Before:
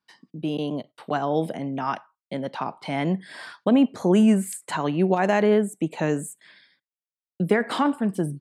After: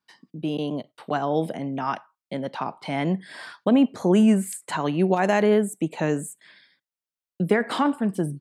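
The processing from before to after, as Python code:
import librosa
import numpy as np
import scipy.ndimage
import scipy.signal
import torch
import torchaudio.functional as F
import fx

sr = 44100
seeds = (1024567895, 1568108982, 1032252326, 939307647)

y = fx.high_shelf(x, sr, hz=fx.line((4.85, 5500.0), (5.86, 8600.0)), db=7.0, at=(4.85, 5.86), fade=0.02)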